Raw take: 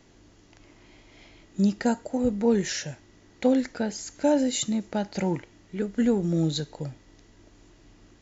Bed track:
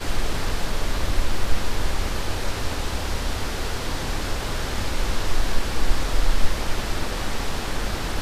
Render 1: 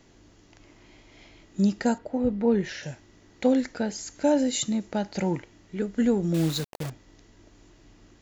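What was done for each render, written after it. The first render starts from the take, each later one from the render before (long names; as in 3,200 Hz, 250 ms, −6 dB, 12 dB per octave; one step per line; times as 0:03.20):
0:01.98–0:02.83: high-frequency loss of the air 210 metres
0:06.34–0:06.90: bit-depth reduction 6 bits, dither none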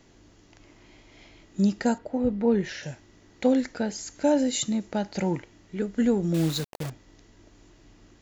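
no processing that can be heard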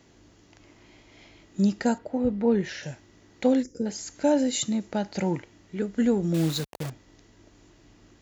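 0:03.63–0:03.86: gain on a spectral selection 540–4,900 Hz −24 dB
high-pass filter 44 Hz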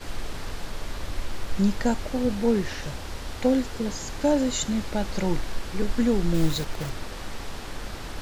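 mix in bed track −9 dB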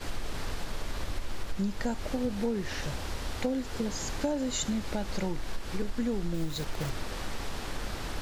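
downward compressor 6 to 1, threshold −27 dBFS, peak gain reduction 12 dB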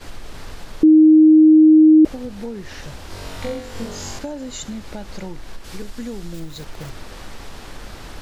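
0:00.83–0:02.05: beep over 312 Hz −6 dBFS
0:03.08–0:04.19: flutter between parallel walls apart 3.7 metres, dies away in 0.74 s
0:05.64–0:06.40: high-shelf EQ 3,400 Hz +8 dB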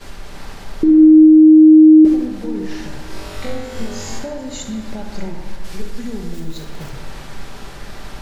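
delay with a band-pass on its return 70 ms, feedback 70%, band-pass 1,100 Hz, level −7 dB
rectangular room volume 1,200 cubic metres, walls mixed, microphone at 1.2 metres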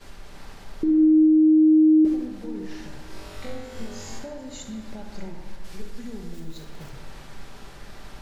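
level −9.5 dB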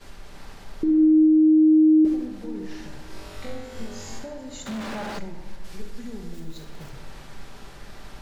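0:04.66–0:05.19: mid-hump overdrive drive 41 dB, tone 1,600 Hz, clips at −24 dBFS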